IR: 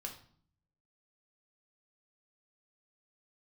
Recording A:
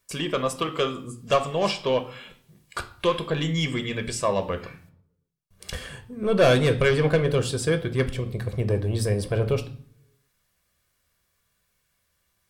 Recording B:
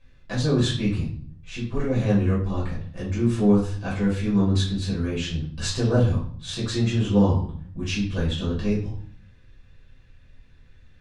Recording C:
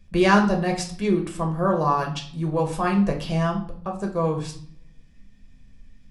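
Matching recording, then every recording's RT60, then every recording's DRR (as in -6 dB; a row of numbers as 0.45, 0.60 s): C; 0.55, 0.55, 0.55 s; 7.5, -8.0, 1.0 dB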